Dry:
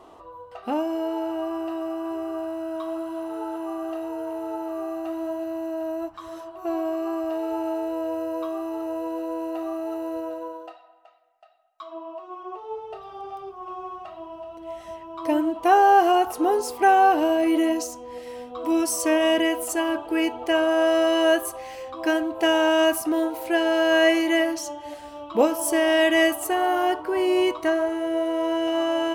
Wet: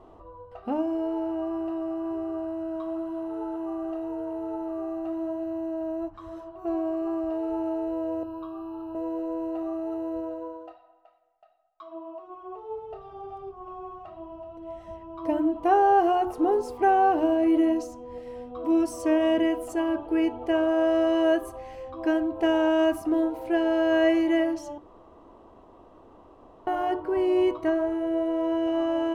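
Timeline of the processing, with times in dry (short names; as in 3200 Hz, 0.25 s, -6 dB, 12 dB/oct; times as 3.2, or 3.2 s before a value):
8.23–8.95 fixed phaser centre 2000 Hz, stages 6
24.78–26.67 room tone
whole clip: tilt -3.5 dB/oct; notches 60/120/180/240/300/360 Hz; gain -5.5 dB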